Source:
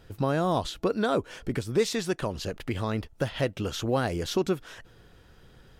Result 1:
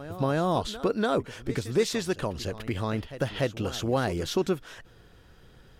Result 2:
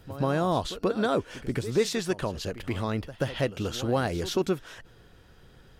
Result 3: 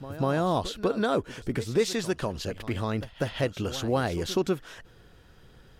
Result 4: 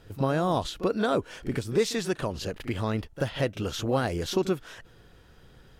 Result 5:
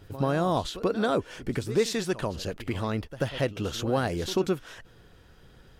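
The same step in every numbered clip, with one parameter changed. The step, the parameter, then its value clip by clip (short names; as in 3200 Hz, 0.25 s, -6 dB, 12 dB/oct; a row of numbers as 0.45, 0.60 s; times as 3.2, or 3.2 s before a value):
pre-echo, time: 292, 132, 196, 37, 88 ms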